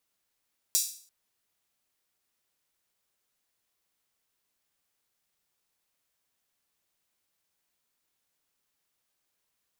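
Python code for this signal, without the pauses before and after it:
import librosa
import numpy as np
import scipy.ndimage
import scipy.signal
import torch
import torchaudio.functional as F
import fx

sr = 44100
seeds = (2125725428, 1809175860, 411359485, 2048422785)

y = fx.drum_hat_open(sr, length_s=0.34, from_hz=5600.0, decay_s=0.47)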